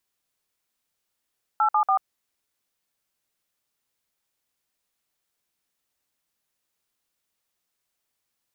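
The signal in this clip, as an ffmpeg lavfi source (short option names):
-f lavfi -i "aevalsrc='0.1*clip(min(mod(t,0.143),0.088-mod(t,0.143))/0.002,0,1)*(eq(floor(t/0.143),0)*(sin(2*PI*852*mod(t,0.143))+sin(2*PI*1336*mod(t,0.143)))+eq(floor(t/0.143),1)*(sin(2*PI*852*mod(t,0.143))+sin(2*PI*1209*mod(t,0.143)))+eq(floor(t/0.143),2)*(sin(2*PI*770*mod(t,0.143))+sin(2*PI*1209*mod(t,0.143))))':d=0.429:s=44100"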